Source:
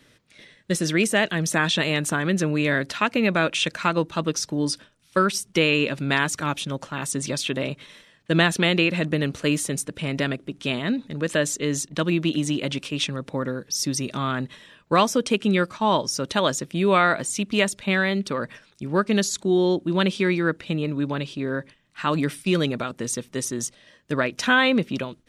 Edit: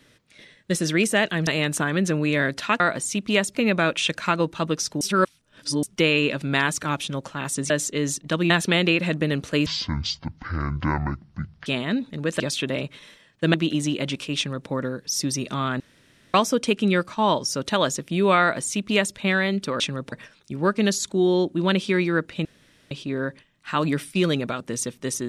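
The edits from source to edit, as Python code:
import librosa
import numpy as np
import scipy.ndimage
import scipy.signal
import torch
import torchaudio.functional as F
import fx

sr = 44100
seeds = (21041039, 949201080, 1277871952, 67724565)

y = fx.edit(x, sr, fx.cut(start_s=1.47, length_s=0.32),
    fx.reverse_span(start_s=4.58, length_s=0.82),
    fx.swap(start_s=7.27, length_s=1.14, other_s=11.37, other_length_s=0.8),
    fx.speed_span(start_s=9.57, length_s=1.06, speed=0.53),
    fx.duplicate(start_s=13.0, length_s=0.32, to_s=18.43),
    fx.room_tone_fill(start_s=14.43, length_s=0.54),
    fx.duplicate(start_s=17.04, length_s=0.75, to_s=3.12),
    fx.room_tone_fill(start_s=20.76, length_s=0.46), tone=tone)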